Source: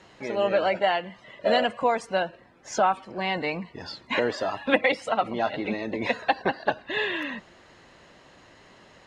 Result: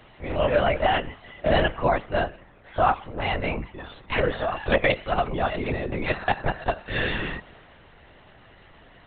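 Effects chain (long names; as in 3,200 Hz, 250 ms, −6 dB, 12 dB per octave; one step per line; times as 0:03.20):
transient designer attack −2 dB, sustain +3 dB
linear-prediction vocoder at 8 kHz whisper
level +2 dB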